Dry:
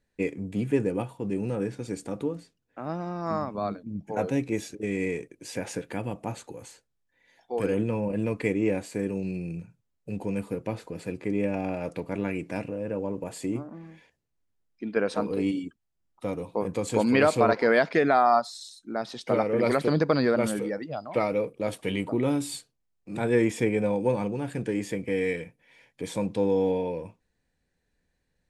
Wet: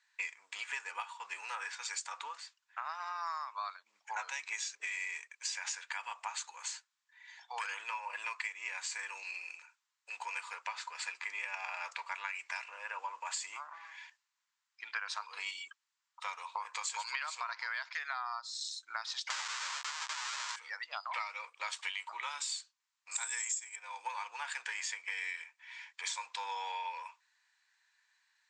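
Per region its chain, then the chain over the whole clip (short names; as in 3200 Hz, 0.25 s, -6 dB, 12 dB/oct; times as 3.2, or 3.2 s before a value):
19.3–20.56 Schmitt trigger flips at -30.5 dBFS + doubler 16 ms -9.5 dB
23.11–23.76 synth low-pass 7600 Hz, resonance Q 11 + tone controls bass -1 dB, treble +8 dB
whole clip: Chebyshev band-pass 960–7600 Hz, order 4; dynamic EQ 6200 Hz, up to +6 dB, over -52 dBFS, Q 0.82; compressor 12:1, threshold -45 dBFS; gain +9.5 dB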